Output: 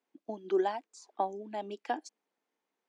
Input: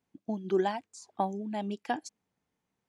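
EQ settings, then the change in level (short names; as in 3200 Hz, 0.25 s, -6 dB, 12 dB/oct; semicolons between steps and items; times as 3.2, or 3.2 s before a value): HPF 290 Hz 24 dB/oct; dynamic EQ 2400 Hz, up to -4 dB, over -46 dBFS, Q 0.76; air absorption 58 m; 0.0 dB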